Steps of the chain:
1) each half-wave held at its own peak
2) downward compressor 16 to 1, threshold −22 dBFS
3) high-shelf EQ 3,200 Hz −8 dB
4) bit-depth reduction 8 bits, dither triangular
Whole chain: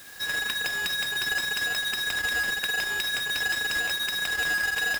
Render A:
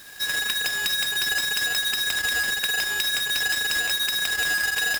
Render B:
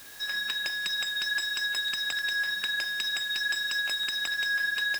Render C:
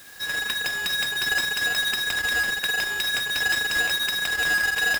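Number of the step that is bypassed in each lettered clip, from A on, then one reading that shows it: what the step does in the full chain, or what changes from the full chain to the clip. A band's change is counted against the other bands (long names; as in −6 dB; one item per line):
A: 3, 8 kHz band +6.5 dB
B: 1, distortion level −5 dB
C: 2, average gain reduction 3.0 dB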